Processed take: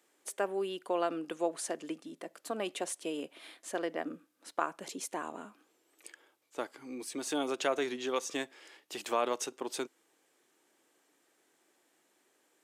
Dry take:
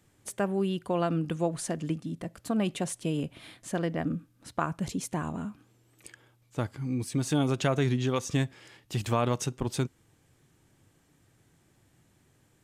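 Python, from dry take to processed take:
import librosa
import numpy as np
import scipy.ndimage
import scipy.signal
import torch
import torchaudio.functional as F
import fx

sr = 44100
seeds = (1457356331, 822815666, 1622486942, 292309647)

y = scipy.signal.sosfilt(scipy.signal.butter(4, 330.0, 'highpass', fs=sr, output='sos'), x)
y = F.gain(torch.from_numpy(y), -2.0).numpy()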